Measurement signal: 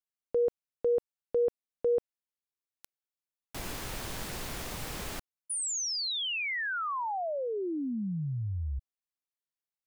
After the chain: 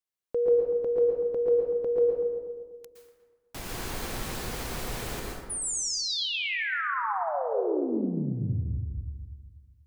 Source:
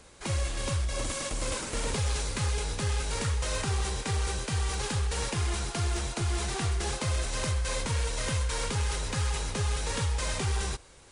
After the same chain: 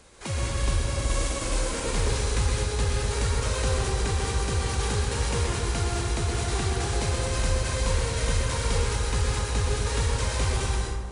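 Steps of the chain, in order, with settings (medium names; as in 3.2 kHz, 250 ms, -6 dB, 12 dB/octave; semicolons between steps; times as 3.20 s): on a send: filtered feedback delay 242 ms, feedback 40%, low-pass 1 kHz, level -8 dB; on the sum: plate-style reverb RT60 1.1 s, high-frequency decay 0.55×, pre-delay 105 ms, DRR -1 dB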